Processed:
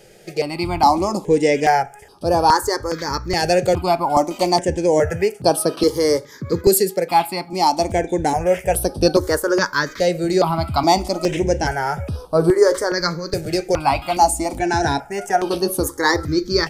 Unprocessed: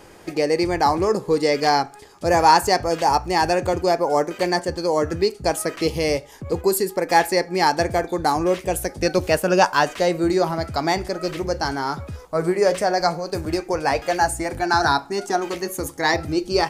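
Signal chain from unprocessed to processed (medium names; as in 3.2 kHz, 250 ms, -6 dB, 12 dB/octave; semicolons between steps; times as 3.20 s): 5.10–7.53 s: high-pass 99 Hz 24 dB/octave; level rider; stepped phaser 2.4 Hz 280–7000 Hz; trim +1 dB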